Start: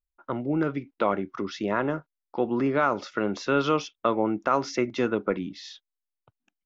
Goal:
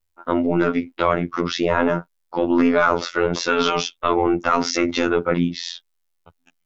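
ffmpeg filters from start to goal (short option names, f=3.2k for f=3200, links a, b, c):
-af "apsyclip=24dB,afftfilt=real='hypot(re,im)*cos(PI*b)':imag='0':win_size=2048:overlap=0.75,volume=-8.5dB"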